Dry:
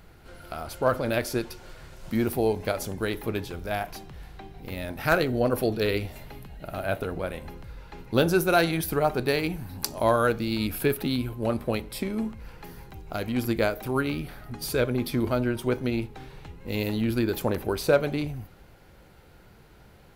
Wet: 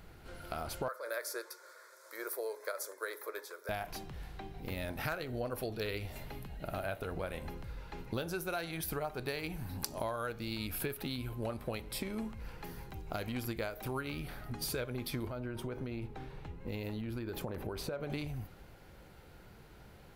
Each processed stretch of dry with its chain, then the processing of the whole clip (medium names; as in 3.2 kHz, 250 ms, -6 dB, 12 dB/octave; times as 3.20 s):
0.88–3.69 s: high-pass 530 Hz 24 dB/octave + static phaser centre 770 Hz, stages 6
15.27–18.10 s: treble shelf 2.6 kHz -8.5 dB + compression, threshold -29 dBFS
whole clip: dynamic bell 260 Hz, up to -6 dB, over -36 dBFS, Q 0.75; compression 10:1, threshold -31 dBFS; trim -2.5 dB